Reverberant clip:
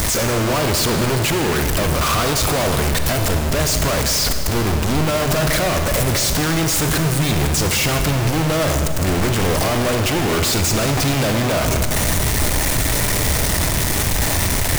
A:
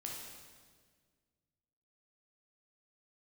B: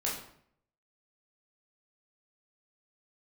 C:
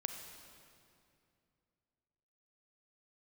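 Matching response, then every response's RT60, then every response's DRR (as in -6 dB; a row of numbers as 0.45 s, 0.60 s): C; 1.7 s, 0.65 s, 2.5 s; -2.0 dB, -5.0 dB, 5.0 dB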